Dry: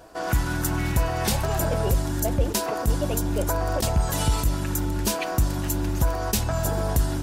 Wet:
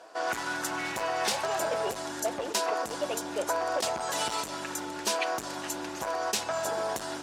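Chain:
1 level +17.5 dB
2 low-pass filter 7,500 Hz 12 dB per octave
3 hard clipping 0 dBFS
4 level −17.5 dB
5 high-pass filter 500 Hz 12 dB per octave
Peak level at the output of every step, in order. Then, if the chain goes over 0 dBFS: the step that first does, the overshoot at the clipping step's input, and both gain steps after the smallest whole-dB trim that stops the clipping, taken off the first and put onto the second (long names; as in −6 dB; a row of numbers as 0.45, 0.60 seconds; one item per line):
+6.0, +5.5, 0.0, −17.5, −14.5 dBFS
step 1, 5.5 dB
step 1 +11.5 dB, step 4 −11.5 dB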